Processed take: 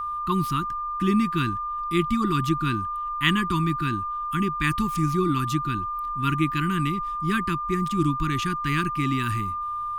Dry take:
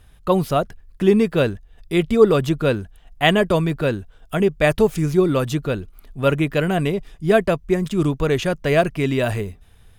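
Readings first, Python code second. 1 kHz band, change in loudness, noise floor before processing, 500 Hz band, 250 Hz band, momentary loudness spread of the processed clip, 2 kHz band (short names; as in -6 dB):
+3.0 dB, -5.0 dB, -49 dBFS, -16.5 dB, -4.0 dB, 5 LU, -4.0 dB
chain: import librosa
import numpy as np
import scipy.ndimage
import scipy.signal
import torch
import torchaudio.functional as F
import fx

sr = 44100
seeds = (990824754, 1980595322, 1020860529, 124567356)

y = scipy.signal.sosfilt(scipy.signal.ellip(3, 1.0, 40, [340.0, 1000.0], 'bandstop', fs=sr, output='sos'), x)
y = y + 10.0 ** (-24.0 / 20.0) * np.sin(2.0 * np.pi * 1200.0 * np.arange(len(y)) / sr)
y = y * 10.0 ** (-3.0 / 20.0)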